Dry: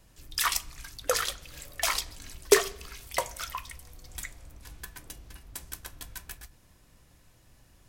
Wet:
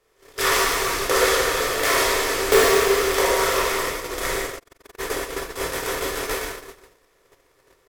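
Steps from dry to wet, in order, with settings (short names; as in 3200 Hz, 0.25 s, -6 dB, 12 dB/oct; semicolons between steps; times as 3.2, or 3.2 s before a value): per-bin compression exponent 0.4; high shelf 9700 Hz +4.5 dB; in parallel at -12 dB: bit-crush 7-bit; on the sum: wrapped overs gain 1.5 dB; tone controls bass 0 dB, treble -8 dB; on a send: echo 0.178 s -22.5 dB; on the sum: plate-style reverb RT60 2.4 s, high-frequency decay 0.9×, DRR -7.5 dB; 4.58–4.98 AM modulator 22 Hz, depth 90%; gate -21 dBFS, range -32 dB; gain -3.5 dB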